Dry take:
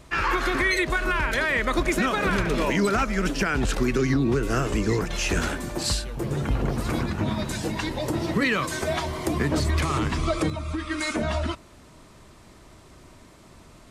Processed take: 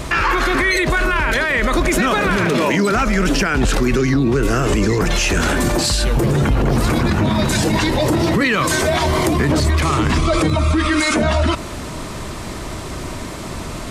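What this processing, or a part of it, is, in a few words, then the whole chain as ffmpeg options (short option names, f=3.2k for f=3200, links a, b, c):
loud club master: -filter_complex "[0:a]asettb=1/sr,asplit=3[a][b][c];[a]atrim=end=2.374[d];[b]atrim=start=2.37:end=2.92,asetpts=PTS-STARTPTS,afade=t=in:d=0.004:c=qsin,afade=t=out:st=0.546:d=0.004:c=qsin,highpass=f=110:w=0.5412,highpass=f=110:w=1.3066[e];[c]atrim=start=2.916[f];[d][e]acrossfade=d=0.004:c1=hsin:c2=qsin[g];[g][f]acrossfade=d=0.004:c1=qsin:c2=hsin,acompressor=threshold=-27dB:ratio=2.5,asoftclip=type=hard:threshold=-18dB,alimiter=level_in=29.5dB:limit=-1dB:release=50:level=0:latency=1,volume=-7.5dB"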